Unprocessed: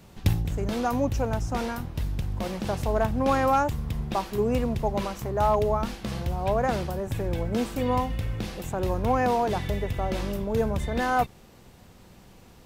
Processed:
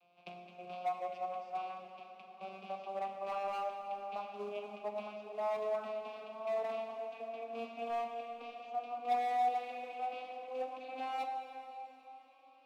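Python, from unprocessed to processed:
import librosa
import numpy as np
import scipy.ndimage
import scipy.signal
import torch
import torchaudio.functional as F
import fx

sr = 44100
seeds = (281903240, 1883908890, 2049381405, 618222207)

p1 = fx.vocoder_glide(x, sr, note=53, semitones=8)
p2 = fx.highpass(p1, sr, hz=420.0, slope=6)
p3 = fx.band_shelf(p2, sr, hz=3400.0, db=12.0, octaves=1.7)
p4 = fx.quant_float(p3, sr, bits=2)
p5 = fx.vowel_filter(p4, sr, vowel='a')
p6 = 10.0 ** (-35.0 / 20.0) * (np.abs((p5 / 10.0 ** (-35.0 / 20.0) + 3.0) % 4.0 - 2.0) - 1.0)
p7 = p5 + (p6 * 10.0 ** (-5.5 / 20.0))
p8 = fx.rev_plate(p7, sr, seeds[0], rt60_s=3.7, hf_ratio=0.9, predelay_ms=0, drr_db=4.5)
y = p8 * 10.0 ** (-2.0 / 20.0)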